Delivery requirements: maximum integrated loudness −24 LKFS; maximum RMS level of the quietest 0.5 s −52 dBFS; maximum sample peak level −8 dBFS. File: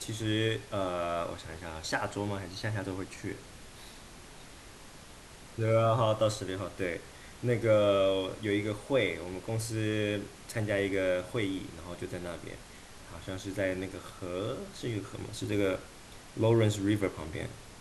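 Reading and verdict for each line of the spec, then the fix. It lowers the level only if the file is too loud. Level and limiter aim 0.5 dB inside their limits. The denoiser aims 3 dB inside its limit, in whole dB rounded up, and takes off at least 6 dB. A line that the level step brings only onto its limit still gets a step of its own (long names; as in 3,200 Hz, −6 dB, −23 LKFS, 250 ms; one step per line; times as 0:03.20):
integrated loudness −32.0 LKFS: in spec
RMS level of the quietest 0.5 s −50 dBFS: out of spec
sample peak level −14.5 dBFS: in spec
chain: broadband denoise 6 dB, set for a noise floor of −50 dBFS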